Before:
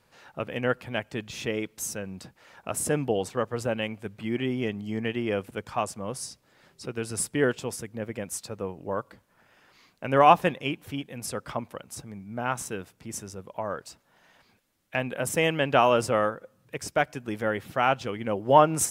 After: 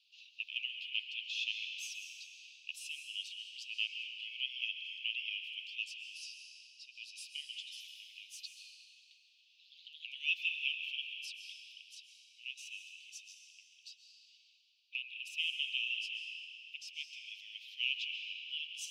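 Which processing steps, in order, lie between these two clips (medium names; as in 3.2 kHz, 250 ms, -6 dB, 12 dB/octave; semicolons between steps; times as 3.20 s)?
coarse spectral quantiser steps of 15 dB; steep high-pass 2.6 kHz 96 dB/octave; gain riding within 5 dB 2 s; 7.48–10.25 s: ever faster or slower copies 101 ms, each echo +2 st, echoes 3, each echo -6 dB; distance through air 280 m; reverberation RT60 3.0 s, pre-delay 95 ms, DRR 3.5 dB; trim +6 dB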